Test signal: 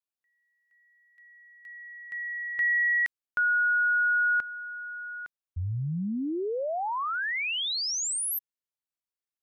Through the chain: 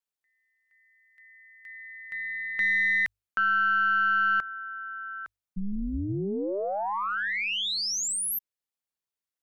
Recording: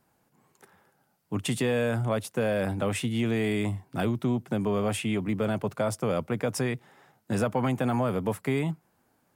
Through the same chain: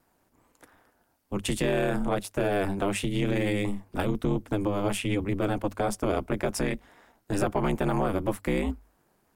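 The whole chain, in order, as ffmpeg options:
-af "aeval=exprs='val(0)*sin(2*PI*100*n/s)':c=same,bandreject=f=50:t=h:w=6,bandreject=f=100:t=h:w=6,aeval=exprs='0.178*(cos(1*acos(clip(val(0)/0.178,-1,1)))-cos(1*PI/2))+0.00708*(cos(4*acos(clip(val(0)/0.178,-1,1)))-cos(4*PI/2))+0.00282*(cos(5*acos(clip(val(0)/0.178,-1,1)))-cos(5*PI/2))':c=same,volume=1.41"

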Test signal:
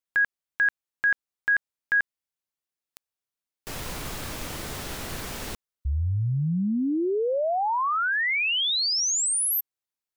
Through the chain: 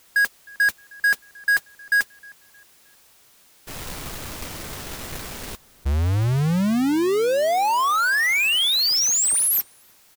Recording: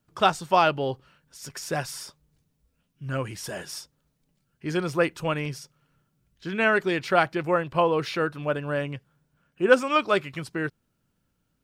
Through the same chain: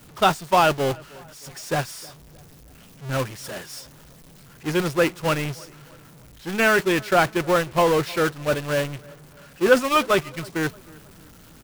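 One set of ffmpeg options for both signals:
-filter_complex "[0:a]aeval=exprs='val(0)+0.5*0.106*sgn(val(0))':c=same,agate=range=0.0447:threshold=0.1:ratio=3:release=43:detection=rms,asplit=2[s0][s1];[s1]adelay=311,lowpass=f=2000:p=1,volume=0.0708,asplit=2[s2][s3];[s3]adelay=311,lowpass=f=2000:p=1,volume=0.47,asplit=2[s4][s5];[s5]adelay=311,lowpass=f=2000:p=1,volume=0.47[s6];[s2][s4][s6]amix=inputs=3:normalize=0[s7];[s0][s7]amix=inputs=2:normalize=0"

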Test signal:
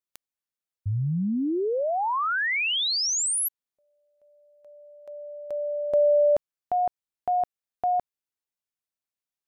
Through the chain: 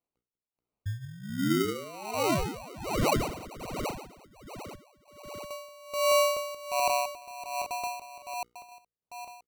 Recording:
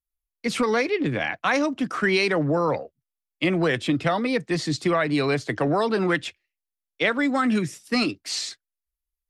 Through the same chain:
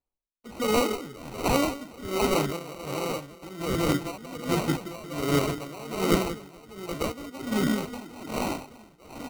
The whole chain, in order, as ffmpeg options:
-af "equalizer=f=1800:t=o:w=1.6:g=-3.5,bandreject=f=60:t=h:w=6,bandreject=f=120:t=h:w=6,bandreject=f=180:t=h:w=6,bandreject=f=240:t=h:w=6,bandreject=f=300:t=h:w=6,bandreject=f=360:t=h:w=6,bandreject=f=420:t=h:w=6,bandreject=f=480:t=h:w=6,aecho=1:1:180|432|784.8|1279|1970:0.631|0.398|0.251|0.158|0.1,acrusher=samples=26:mix=1:aa=0.000001,aeval=exprs='val(0)*pow(10,-19*(0.5-0.5*cos(2*PI*1.3*n/s))/20)':c=same"

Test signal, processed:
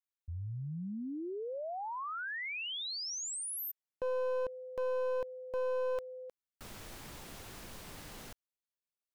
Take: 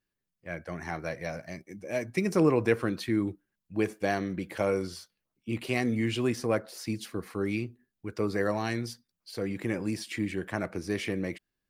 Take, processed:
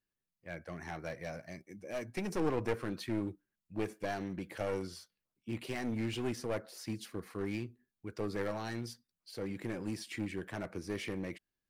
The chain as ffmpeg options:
-af "aeval=exprs='clip(val(0),-1,0.0316)':c=same,volume=0.501"

